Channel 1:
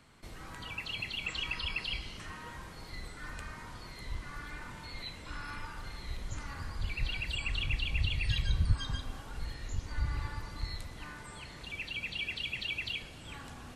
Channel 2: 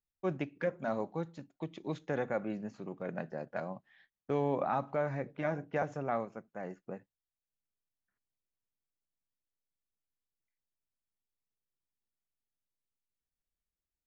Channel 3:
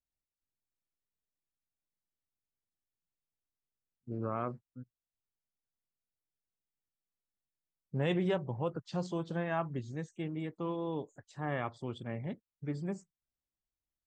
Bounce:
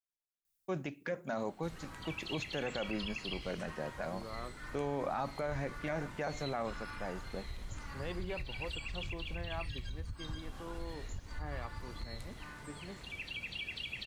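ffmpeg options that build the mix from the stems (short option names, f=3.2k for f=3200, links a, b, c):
-filter_complex "[0:a]alimiter=level_in=1dB:limit=-24dB:level=0:latency=1:release=231,volume=-1dB,acompressor=threshold=-34dB:ratio=6,adelay=1400,volume=-3dB[a];[1:a]crystalizer=i=3.5:c=0,adelay=450,volume=-0.5dB[b];[2:a]lowshelf=f=200:g=-9.5,volume=-8dB[c];[a][b][c]amix=inputs=3:normalize=0,alimiter=level_in=2dB:limit=-24dB:level=0:latency=1:release=29,volume=-2dB"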